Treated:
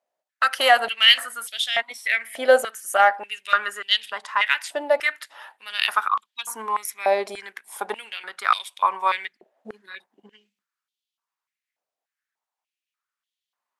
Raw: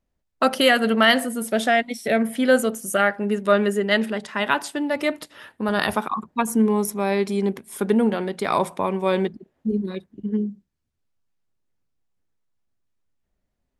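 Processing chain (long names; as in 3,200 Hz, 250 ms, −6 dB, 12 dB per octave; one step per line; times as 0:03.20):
harmonic generator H 4 −43 dB, 6 −42 dB, 7 −35 dB, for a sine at −4 dBFS
high-pass on a step sequencer 3.4 Hz 650–3,300 Hz
level −1 dB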